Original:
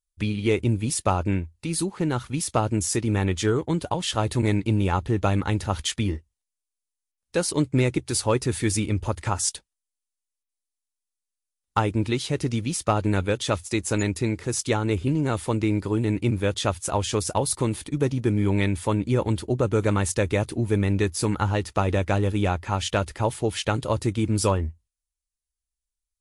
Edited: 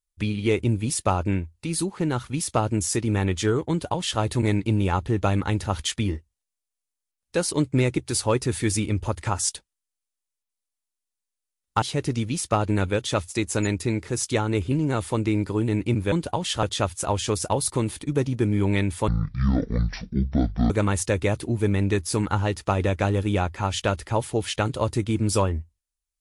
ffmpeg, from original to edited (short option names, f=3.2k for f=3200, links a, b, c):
-filter_complex "[0:a]asplit=6[a][b][c][d][e][f];[a]atrim=end=11.822[g];[b]atrim=start=12.178:end=16.482[h];[c]atrim=start=3.698:end=4.212[i];[d]atrim=start=16.478:end=18.934[j];[e]atrim=start=18.93:end=19.79,asetpts=PTS-STARTPTS,asetrate=23373,aresample=44100,atrim=end_sample=71558,asetpts=PTS-STARTPTS[k];[f]atrim=start=19.786[l];[g][h]acrossfade=d=0.004:c1=hsin:c2=hsin[m];[m][i]acrossfade=d=0.004:c1=hsin:c2=hsin[n];[n][j]acrossfade=d=0.004:c1=hsin:c2=hsin[o];[o][k]acrossfade=d=0.004:c1=hsin:c2=hsin[p];[p][l]acrossfade=d=0.004:c1=hsin:c2=hsin"